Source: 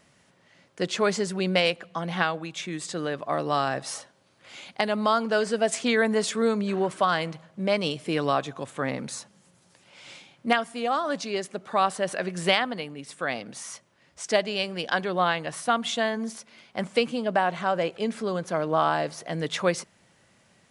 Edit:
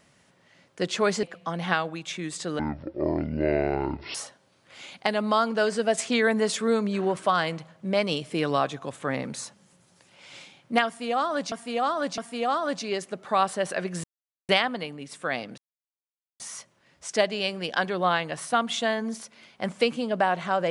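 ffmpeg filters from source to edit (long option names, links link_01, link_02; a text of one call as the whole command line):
ffmpeg -i in.wav -filter_complex "[0:a]asplit=8[link_01][link_02][link_03][link_04][link_05][link_06][link_07][link_08];[link_01]atrim=end=1.232[link_09];[link_02]atrim=start=1.718:end=3.084[link_10];[link_03]atrim=start=3.08:end=3.89,asetpts=PTS-STARTPTS,asetrate=22932,aresample=44100,atrim=end_sample=68694,asetpts=PTS-STARTPTS[link_11];[link_04]atrim=start=3.886:end=11.262[link_12];[link_05]atrim=start=10.598:end=11.262[link_13];[link_06]atrim=start=10.598:end=12.46,asetpts=PTS-STARTPTS,afade=type=out:start_time=1.858:duration=0.004:curve=hsin,apad=pad_dur=0.45[link_14];[link_07]atrim=start=12.46:end=13.55,asetpts=PTS-STARTPTS,afade=type=in:duration=0.004:curve=hsin,afade=type=out:start_time=1.086:duration=0.004:curve=hsin,apad=pad_dur=0.82[link_15];[link_08]atrim=start=13.55,asetpts=PTS-STARTPTS,afade=type=in:duration=0.004:curve=hsin[link_16];[link_09][link_10]acrossfade=duration=0.004:curve1=hsin:curve2=hsin[link_17];[link_17][link_11]acrossfade=duration=0.004:curve1=hsin:curve2=hsin[link_18];[link_18][link_12]acrossfade=duration=0.004:curve1=hsin:curve2=hsin[link_19];[link_19][link_13]acrossfade=duration=0.004:curve1=hsin:curve2=hsin[link_20];[link_14][link_15][link_16]concat=n=3:v=0:a=1[link_21];[link_20][link_21]acrossfade=duration=0.004:curve1=hsin:curve2=hsin" out.wav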